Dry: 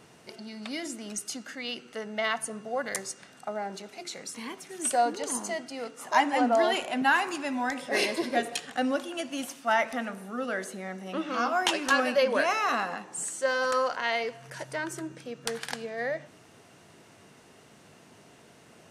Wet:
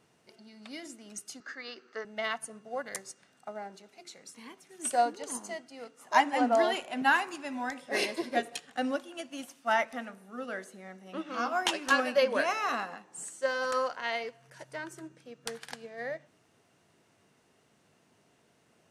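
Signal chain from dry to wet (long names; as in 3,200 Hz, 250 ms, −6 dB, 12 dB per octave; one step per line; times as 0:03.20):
0:01.40–0:02.05: loudspeaker in its box 270–6,500 Hz, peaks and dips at 390 Hz +8 dB, 1,200 Hz +10 dB, 1,700 Hz +10 dB, 3,000 Hz −6 dB, 4,700 Hz +5 dB
expander for the loud parts 1.5 to 1, over −43 dBFS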